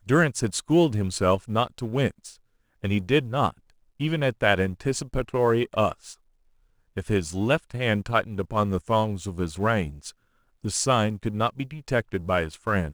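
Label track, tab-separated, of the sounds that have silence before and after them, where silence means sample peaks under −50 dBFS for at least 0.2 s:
2.820000	3.700000	sound
4.000000	6.150000	sound
6.960000	10.110000	sound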